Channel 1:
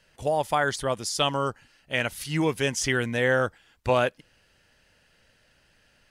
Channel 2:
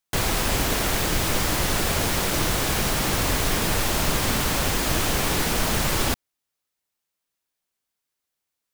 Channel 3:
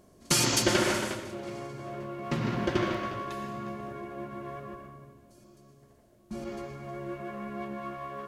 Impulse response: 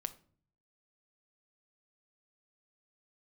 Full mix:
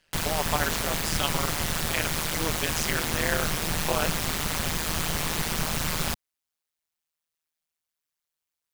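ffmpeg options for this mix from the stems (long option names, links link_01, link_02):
-filter_complex "[0:a]volume=0.5dB[link_01];[1:a]volume=0dB[link_02];[link_01][link_02]amix=inputs=2:normalize=0,equalizer=frequency=260:width=0.45:gain=-5.5,tremolo=f=160:d=0.974"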